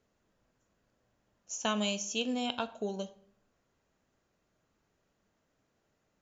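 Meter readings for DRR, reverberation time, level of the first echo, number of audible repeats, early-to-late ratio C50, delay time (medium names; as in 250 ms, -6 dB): 12.0 dB, 0.60 s, no echo, no echo, 16.5 dB, no echo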